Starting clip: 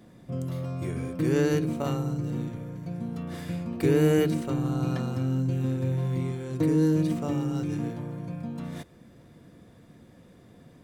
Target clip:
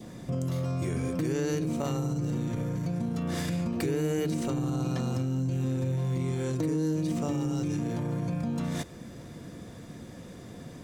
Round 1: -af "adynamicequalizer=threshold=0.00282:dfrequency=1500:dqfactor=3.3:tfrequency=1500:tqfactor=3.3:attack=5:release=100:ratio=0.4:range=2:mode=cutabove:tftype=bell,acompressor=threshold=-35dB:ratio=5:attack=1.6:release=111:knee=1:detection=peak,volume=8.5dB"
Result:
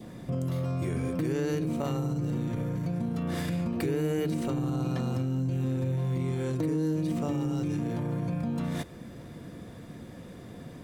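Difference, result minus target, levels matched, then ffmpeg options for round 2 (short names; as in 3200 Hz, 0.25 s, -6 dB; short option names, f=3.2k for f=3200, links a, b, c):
8000 Hz band -5.5 dB
-af "adynamicequalizer=threshold=0.00282:dfrequency=1500:dqfactor=3.3:tfrequency=1500:tqfactor=3.3:attack=5:release=100:ratio=0.4:range=2:mode=cutabove:tftype=bell,acompressor=threshold=-35dB:ratio=5:attack=1.6:release=111:knee=1:detection=peak,equalizer=f=6.4k:w=1.3:g=7,volume=8.5dB"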